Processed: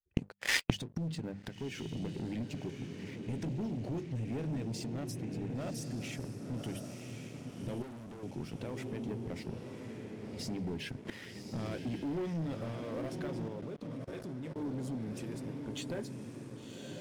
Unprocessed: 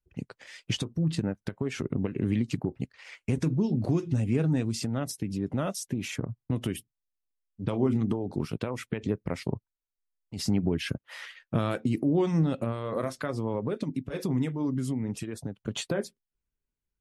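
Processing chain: gate -50 dBFS, range -18 dB; treble shelf 7.9 kHz -5.5 dB; hum notches 50/100/150/200 Hz; on a send: echo that smears into a reverb 1087 ms, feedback 44%, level -6.5 dB; 13.48–14.56 s: on the sum: level held to a coarse grid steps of 17 dB; waveshaping leveller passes 3; dynamic bell 1.2 kHz, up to -6 dB, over -45 dBFS, Q 3.3; inverted gate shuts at -22 dBFS, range -27 dB; 7.82–8.23 s: valve stage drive 54 dB, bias 0.65; trim +9 dB

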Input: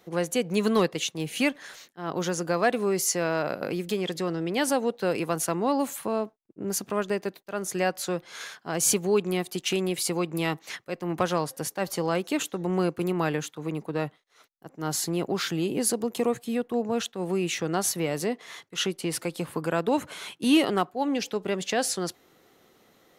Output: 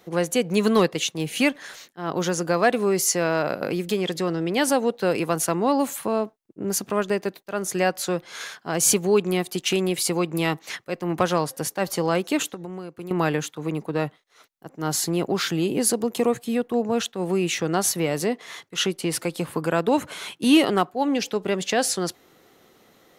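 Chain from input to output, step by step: 12.50–13.11 s: compression 6:1, threshold -37 dBFS, peak gain reduction 15.5 dB; trim +4 dB

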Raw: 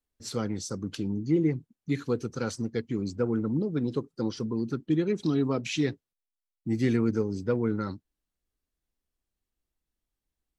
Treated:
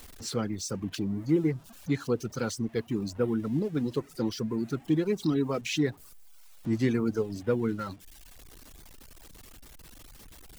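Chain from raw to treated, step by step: jump at every zero crossing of -40.5 dBFS; reverb removal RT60 0.82 s

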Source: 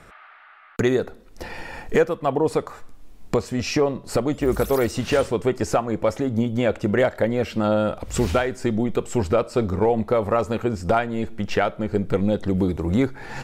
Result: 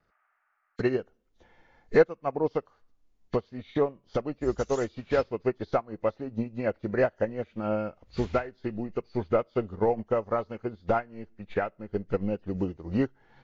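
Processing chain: knee-point frequency compression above 1.6 kHz 1.5:1; vibrato 0.31 Hz 6.9 cents; upward expansion 2.5:1, over -30 dBFS

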